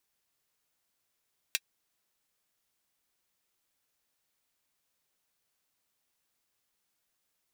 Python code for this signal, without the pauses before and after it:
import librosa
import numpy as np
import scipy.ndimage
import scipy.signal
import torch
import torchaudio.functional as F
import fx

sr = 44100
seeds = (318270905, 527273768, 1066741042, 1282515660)

y = fx.drum_hat(sr, length_s=0.24, from_hz=2300.0, decay_s=0.05)